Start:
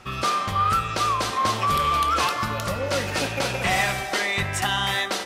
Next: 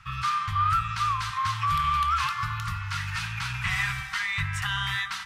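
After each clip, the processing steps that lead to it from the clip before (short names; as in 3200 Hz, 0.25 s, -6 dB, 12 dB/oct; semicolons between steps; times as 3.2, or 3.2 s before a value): inverse Chebyshev band-stop 260–620 Hz, stop band 50 dB; high shelf 3400 Hz -12 dB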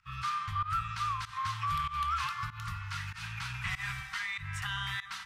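pump 96 bpm, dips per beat 1, -19 dB, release 0.169 s; gain -7 dB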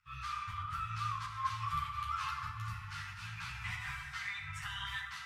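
FDN reverb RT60 1.6 s, low-frequency decay 0.95×, high-frequency decay 0.45×, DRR 0 dB; ensemble effect; gain -4 dB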